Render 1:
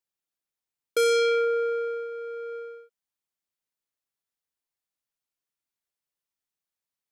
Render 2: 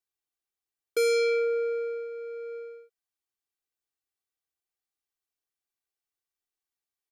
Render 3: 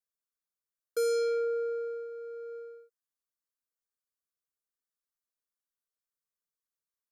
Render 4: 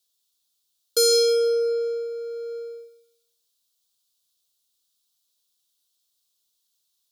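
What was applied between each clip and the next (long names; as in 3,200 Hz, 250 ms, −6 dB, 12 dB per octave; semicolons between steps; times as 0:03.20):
comb filter 2.6 ms, depth 80%; level −5 dB
phaser with its sweep stopped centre 520 Hz, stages 8; level −3 dB
high shelf with overshoot 2,700 Hz +10.5 dB, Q 3; feedback echo with a high-pass in the loop 157 ms, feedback 34%, high-pass 580 Hz, level −10 dB; level +7.5 dB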